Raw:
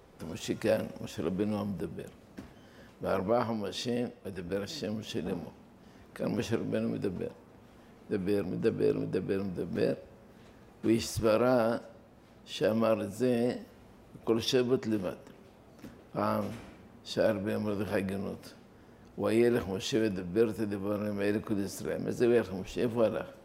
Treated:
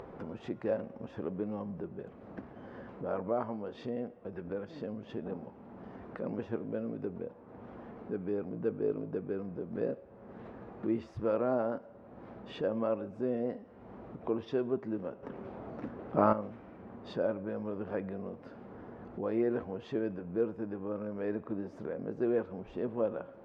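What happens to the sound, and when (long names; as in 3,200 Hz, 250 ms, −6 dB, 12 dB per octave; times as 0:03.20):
0:15.23–0:16.33: clip gain +10 dB
whole clip: low-pass filter 1,300 Hz 12 dB per octave; low-shelf EQ 110 Hz −10.5 dB; upward compression, threshold −31 dBFS; level −3.5 dB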